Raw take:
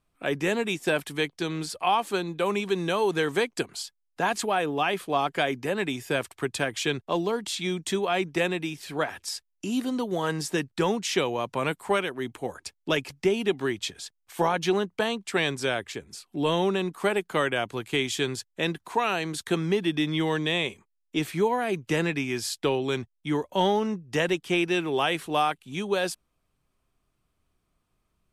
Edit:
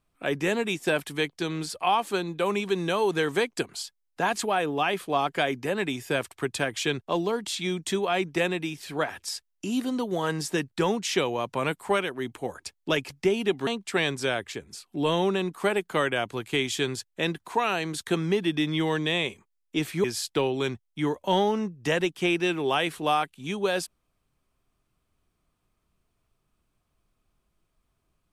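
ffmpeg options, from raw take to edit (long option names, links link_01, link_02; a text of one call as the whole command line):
ffmpeg -i in.wav -filter_complex "[0:a]asplit=3[link_01][link_02][link_03];[link_01]atrim=end=13.672[link_04];[link_02]atrim=start=15.068:end=21.442[link_05];[link_03]atrim=start=22.318[link_06];[link_04][link_05]acrossfade=duration=0.004:curve1=hsin:curve2=hsin[link_07];[link_07][link_06]acrossfade=duration=0.004:curve1=hsin:curve2=hsin" out.wav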